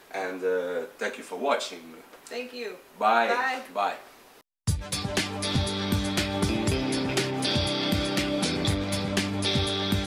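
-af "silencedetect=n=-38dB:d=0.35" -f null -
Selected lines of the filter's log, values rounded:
silence_start: 4.00
silence_end: 4.67 | silence_duration: 0.67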